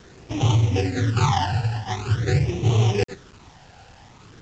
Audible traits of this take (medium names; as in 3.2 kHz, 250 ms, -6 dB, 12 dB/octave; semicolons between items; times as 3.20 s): aliases and images of a low sample rate 2.2 kHz, jitter 20%; phasing stages 12, 0.46 Hz, lowest notch 360–1600 Hz; a quantiser's noise floor 8-bit, dither none; µ-law